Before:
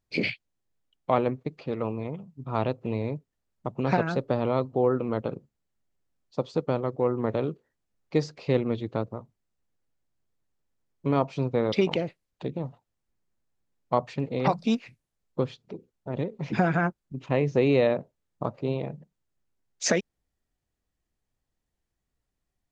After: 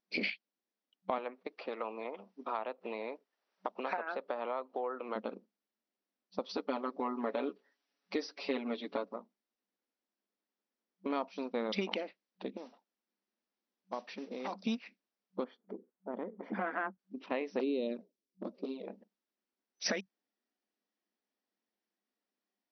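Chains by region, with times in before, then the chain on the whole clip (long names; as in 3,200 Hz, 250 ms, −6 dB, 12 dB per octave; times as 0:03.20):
0:01.18–0:05.16: high-pass filter 530 Hz + treble cut that deepens with the level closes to 1,900 Hz, closed at −25 dBFS + multiband upward and downward compressor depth 70%
0:06.49–0:09.16: comb filter 7.1 ms, depth 86% + one half of a high-frequency compander encoder only
0:11.10–0:11.63: noise gate −38 dBFS, range −7 dB + high-shelf EQ 5,500 Hz +9 dB
0:12.57–0:14.53: downward compressor 2 to 1, threshold −37 dBFS + noise that follows the level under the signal 18 dB
0:15.44–0:16.99: Savitzky-Golay smoothing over 41 samples + saturating transformer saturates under 570 Hz
0:17.59–0:18.88: drawn EQ curve 110 Hz 0 dB, 390 Hz +5 dB, 800 Hz −13 dB, 1,600 Hz −13 dB, 5,400 Hz +3 dB + flanger swept by the level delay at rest 10.3 ms, full sweep at −17 dBFS
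whole clip: brick-wall band-pass 190–6,000 Hz; dynamic equaliser 370 Hz, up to −7 dB, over −37 dBFS, Q 1; downward compressor, threshold −26 dBFS; level −3.5 dB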